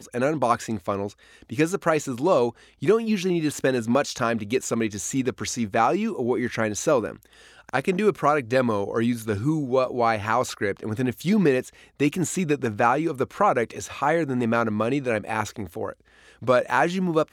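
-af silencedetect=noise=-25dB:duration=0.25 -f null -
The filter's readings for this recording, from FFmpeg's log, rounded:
silence_start: 1.07
silence_end: 1.52 | silence_duration: 0.45
silence_start: 2.49
silence_end: 2.83 | silence_duration: 0.34
silence_start: 7.10
silence_end: 7.69 | silence_duration: 0.59
silence_start: 11.60
silence_end: 12.01 | silence_duration: 0.40
silence_start: 15.90
silence_end: 16.47 | silence_duration: 0.57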